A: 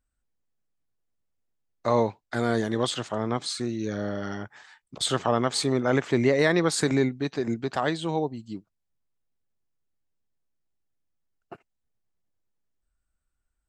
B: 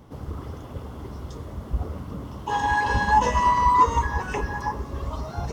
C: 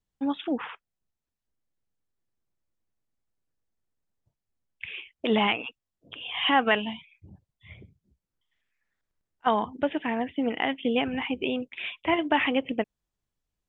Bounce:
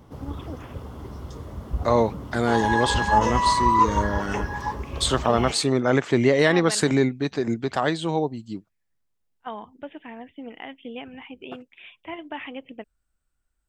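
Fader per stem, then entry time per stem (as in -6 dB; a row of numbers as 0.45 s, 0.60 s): +3.0 dB, -1.0 dB, -11.0 dB; 0.00 s, 0.00 s, 0.00 s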